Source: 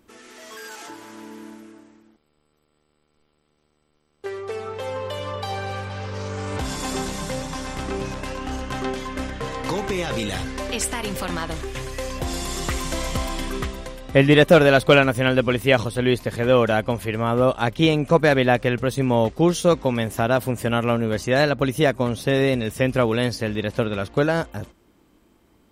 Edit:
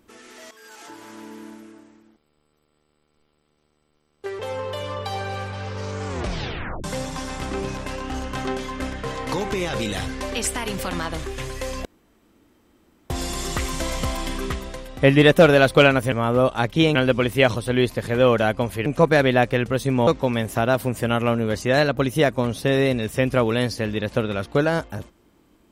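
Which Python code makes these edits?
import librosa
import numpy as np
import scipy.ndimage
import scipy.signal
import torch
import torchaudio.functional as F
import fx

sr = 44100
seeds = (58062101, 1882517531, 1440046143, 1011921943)

y = fx.edit(x, sr, fx.fade_in_from(start_s=0.51, length_s=0.58, floor_db=-14.5),
    fx.cut(start_s=4.39, length_s=0.37),
    fx.tape_stop(start_s=6.44, length_s=0.77),
    fx.insert_room_tone(at_s=12.22, length_s=1.25),
    fx.move(start_s=17.15, length_s=0.83, to_s=15.24),
    fx.cut(start_s=19.19, length_s=0.5), tone=tone)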